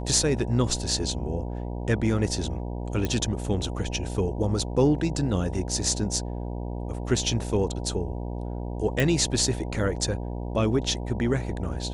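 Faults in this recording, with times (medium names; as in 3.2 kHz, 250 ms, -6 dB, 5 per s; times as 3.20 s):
buzz 60 Hz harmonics 16 -32 dBFS
3.05 s: pop -14 dBFS
9.00 s: pop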